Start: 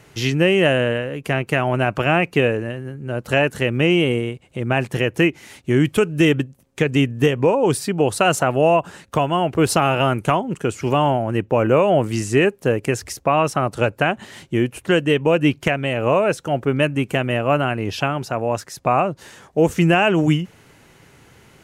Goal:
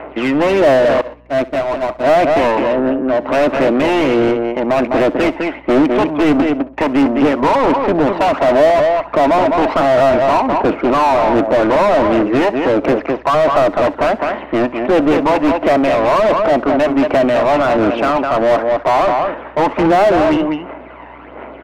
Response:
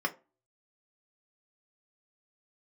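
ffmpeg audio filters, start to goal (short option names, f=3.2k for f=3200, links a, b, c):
-filter_complex "[0:a]aeval=exprs='if(lt(val(0),0),0.251*val(0),val(0))':c=same,aphaser=in_gain=1:out_gain=1:delay=1.1:decay=0.53:speed=1.4:type=sinusoidal,highpass=f=240:w=0.5412,highpass=f=240:w=1.3066,equalizer=f=280:t=q:w=4:g=6,equalizer=f=410:t=q:w=4:g=-3,equalizer=f=630:t=q:w=4:g=9,equalizer=f=1k:t=q:w=4:g=3,equalizer=f=1.7k:t=q:w=4:g=-6,lowpass=f=2.4k:w=0.5412,lowpass=f=2.4k:w=1.3066,asplit=2[a][b];[b]aecho=0:1:206:0.266[c];[a][c]amix=inputs=2:normalize=0,asplit=2[d][e];[e]highpass=f=720:p=1,volume=30dB,asoftclip=type=tanh:threshold=-4.5dB[f];[d][f]amix=inputs=2:normalize=0,lowpass=f=1.1k:p=1,volume=-6dB,asettb=1/sr,asplit=3[g][h][i];[g]atrim=end=1.014[j];[h]atrim=start=1.01:end=2.04,asetpts=PTS-STARTPTS,afade=t=in:d=0.004:c=qsin,afade=t=out:st=1.026:d=0.004:c=qsin,agate=range=-29dB:threshold=-12dB:ratio=16:detection=peak[k];[i]atrim=start=2.036[l];[j][k]acrossfade=d=0.004:c1=hsin:c2=qsin[m];[m][l]acrossfade=d=0.004:c1=qsin:c2=hsin,aeval=exprs='val(0)+0.00501*(sin(2*PI*60*n/s)+sin(2*PI*2*60*n/s)/2+sin(2*PI*3*60*n/s)/3+sin(2*PI*4*60*n/s)/4+sin(2*PI*5*60*n/s)/5)':c=same,asplit=2[n][o];[o]aecho=0:1:65|130:0.112|0.0303[p];[n][p]amix=inputs=2:normalize=0"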